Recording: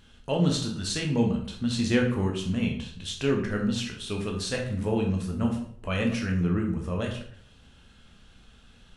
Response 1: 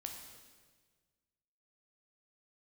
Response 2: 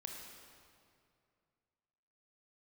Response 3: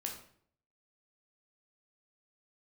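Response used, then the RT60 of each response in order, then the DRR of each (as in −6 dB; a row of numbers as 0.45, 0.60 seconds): 3; 1.5, 2.4, 0.60 seconds; 2.5, 0.5, 0.5 decibels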